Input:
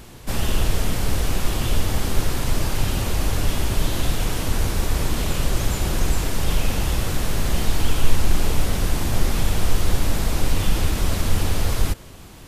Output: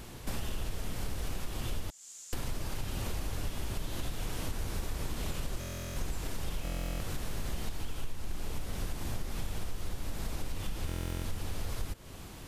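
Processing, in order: 1.9–2.33 band-pass 7100 Hz, Q 7; compressor 6:1, threshold -27 dBFS, peak gain reduction 19.5 dB; stuck buffer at 5.59/6.63/10.87, samples 1024, times 15; gain -4 dB

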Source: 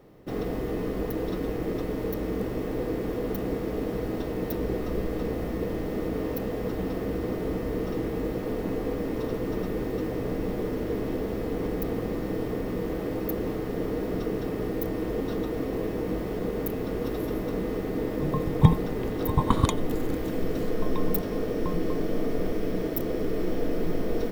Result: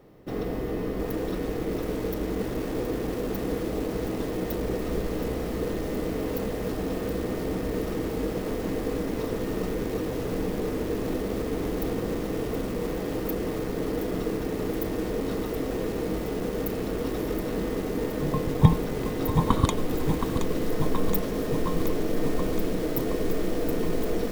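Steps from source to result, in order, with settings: lo-fi delay 0.722 s, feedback 80%, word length 6-bit, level -8 dB

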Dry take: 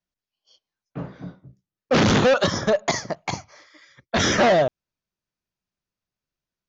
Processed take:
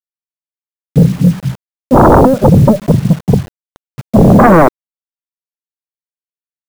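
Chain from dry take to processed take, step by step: low-pass sweep 170 Hz -> 4800 Hz, 4.23–6.31; sine folder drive 14 dB, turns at -8 dBFS; requantised 6-bit, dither none; gain +6.5 dB

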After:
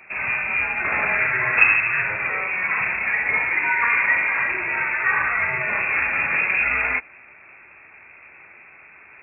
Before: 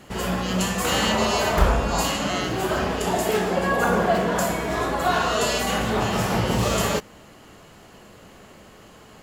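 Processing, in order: inverted band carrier 2600 Hz; HPF 60 Hz; gain +1 dB

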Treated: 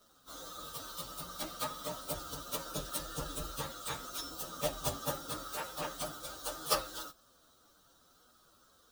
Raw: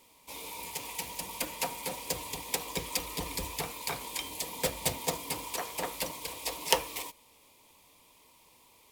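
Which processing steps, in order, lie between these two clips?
inharmonic rescaling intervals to 121%; gain +1.5 dB

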